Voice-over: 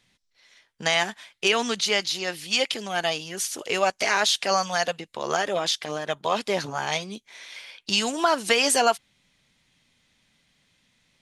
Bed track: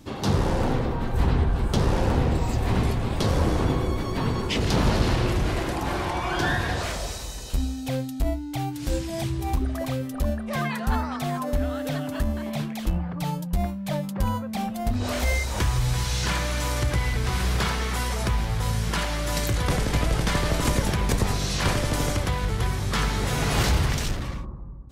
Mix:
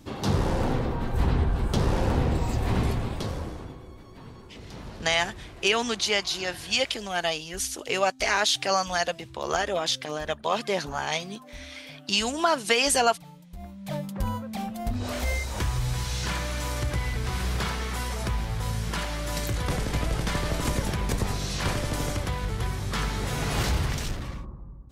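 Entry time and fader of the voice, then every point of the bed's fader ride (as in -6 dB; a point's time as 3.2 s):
4.20 s, -1.5 dB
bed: 2.98 s -2 dB
3.78 s -19.5 dB
13.5 s -19.5 dB
13.94 s -4 dB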